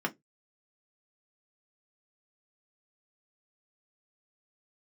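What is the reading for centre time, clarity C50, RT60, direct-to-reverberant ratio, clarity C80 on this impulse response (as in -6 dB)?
6 ms, 26.0 dB, 0.15 s, 1.0 dB, 35.5 dB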